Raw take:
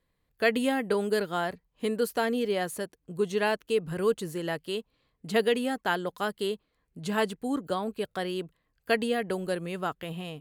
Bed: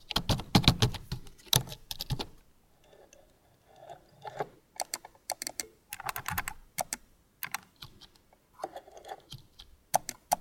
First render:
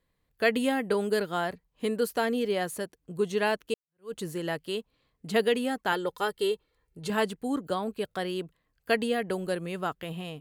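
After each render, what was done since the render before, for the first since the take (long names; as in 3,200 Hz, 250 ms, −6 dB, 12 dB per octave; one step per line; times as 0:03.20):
0:03.74–0:04.15: fade in exponential
0:05.92–0:07.10: comb filter 2.2 ms, depth 61%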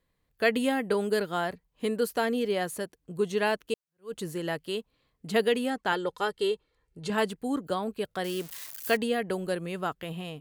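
0:05.70–0:07.18: low-pass filter 8,900 Hz
0:08.24–0:08.97: spike at every zero crossing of −29 dBFS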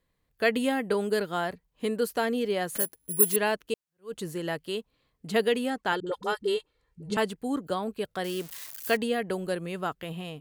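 0:02.75–0:03.36: bad sample-rate conversion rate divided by 4×, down none, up zero stuff
0:06.00–0:07.17: all-pass dispersion highs, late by 66 ms, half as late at 340 Hz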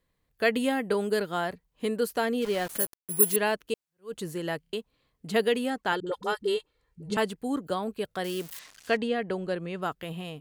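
0:02.42–0:03.36: centre clipping without the shift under −35 dBFS
0:04.61: stutter in place 0.03 s, 4 plays
0:08.59–0:09.82: high-frequency loss of the air 89 metres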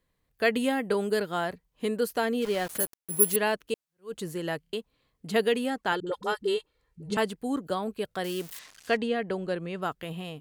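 tape wow and flutter 18 cents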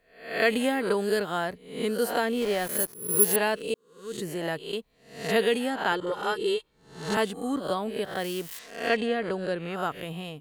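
peak hold with a rise ahead of every peak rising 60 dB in 0.51 s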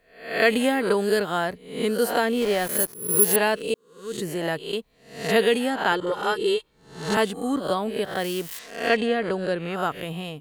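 level +4 dB
brickwall limiter −3 dBFS, peak gain reduction 2.5 dB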